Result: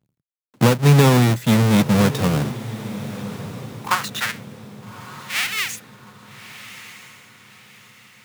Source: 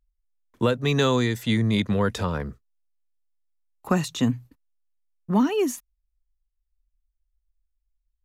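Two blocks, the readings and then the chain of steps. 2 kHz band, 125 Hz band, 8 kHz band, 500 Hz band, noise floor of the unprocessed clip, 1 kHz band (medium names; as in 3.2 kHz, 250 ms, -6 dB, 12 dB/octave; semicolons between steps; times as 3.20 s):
+8.5 dB, +9.5 dB, +9.5 dB, +3.0 dB, -78 dBFS, +6.5 dB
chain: square wave that keeps the level; high-pass sweep 140 Hz -> 2.2 kHz, 2.39–4.45 s; echo that smears into a reverb 1240 ms, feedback 42%, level -14 dB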